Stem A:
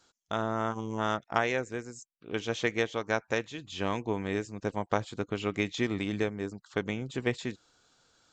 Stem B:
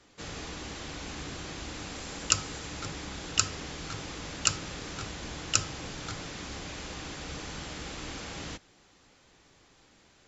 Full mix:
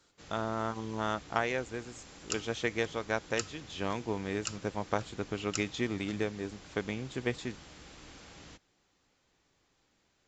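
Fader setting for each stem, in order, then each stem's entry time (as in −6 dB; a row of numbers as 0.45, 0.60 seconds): −3.0, −12.0 decibels; 0.00, 0.00 seconds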